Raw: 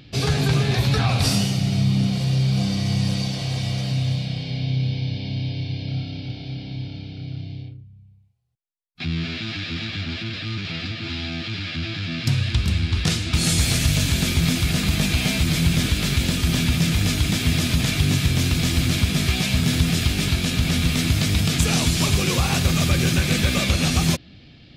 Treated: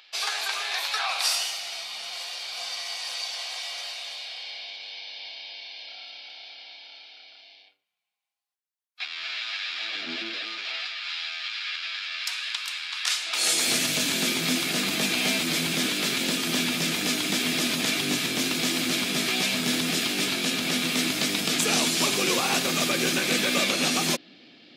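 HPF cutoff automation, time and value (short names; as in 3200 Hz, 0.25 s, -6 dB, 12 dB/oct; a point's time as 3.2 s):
HPF 24 dB/oct
9.71 s 810 Hz
10.13 s 270 Hz
11.04 s 1000 Hz
13.09 s 1000 Hz
13.73 s 250 Hz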